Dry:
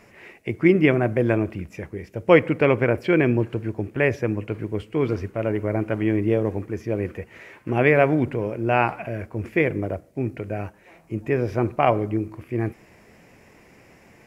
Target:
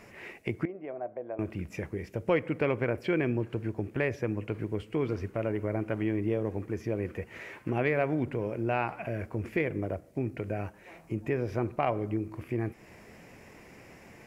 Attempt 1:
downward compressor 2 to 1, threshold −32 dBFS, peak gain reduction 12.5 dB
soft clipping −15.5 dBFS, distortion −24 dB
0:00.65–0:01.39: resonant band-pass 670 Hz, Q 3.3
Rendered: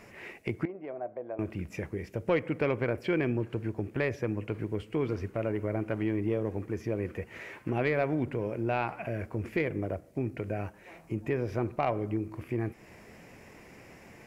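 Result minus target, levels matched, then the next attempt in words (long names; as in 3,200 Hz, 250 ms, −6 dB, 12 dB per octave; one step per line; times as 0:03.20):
soft clipping: distortion +10 dB
downward compressor 2 to 1, threshold −32 dBFS, peak gain reduction 12.5 dB
soft clipping −9.5 dBFS, distortion −35 dB
0:00.65–0:01.39: resonant band-pass 670 Hz, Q 3.3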